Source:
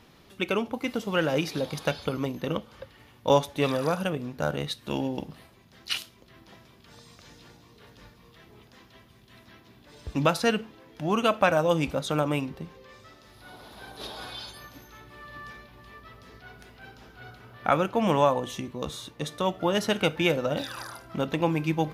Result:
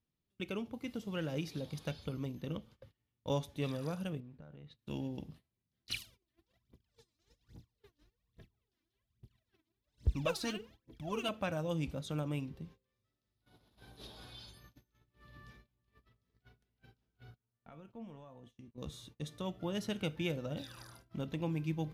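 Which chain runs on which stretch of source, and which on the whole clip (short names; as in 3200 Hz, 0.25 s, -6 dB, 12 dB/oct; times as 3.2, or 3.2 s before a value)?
4.2–4.79 LPF 2600 Hz + compressor 4:1, threshold -41 dBFS
5.9–11.29 bell 150 Hz -5.5 dB 0.37 oct + phaser 1.2 Hz, delay 3.5 ms, feedback 79%
17.34–18.78 high shelf 3500 Hz -8 dB + compressor 2.5:1, threshold -31 dBFS + resonator 230 Hz, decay 0.23 s, mix 70%
whole clip: gate -45 dBFS, range -23 dB; EQ curve 120 Hz 0 dB, 820 Hz -13 dB, 1400 Hz -13 dB, 3300 Hz -8 dB; gain -5 dB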